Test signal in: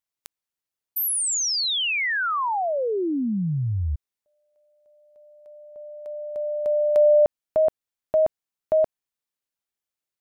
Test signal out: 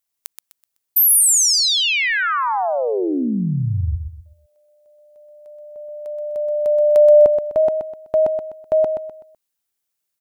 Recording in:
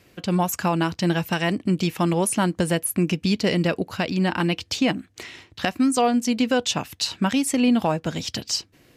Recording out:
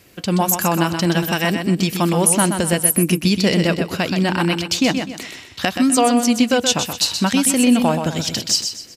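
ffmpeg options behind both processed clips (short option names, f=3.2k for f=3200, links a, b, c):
-af "highshelf=f=6k:g=9,aecho=1:1:126|252|378|504:0.447|0.152|0.0516|0.0176,volume=3.5dB"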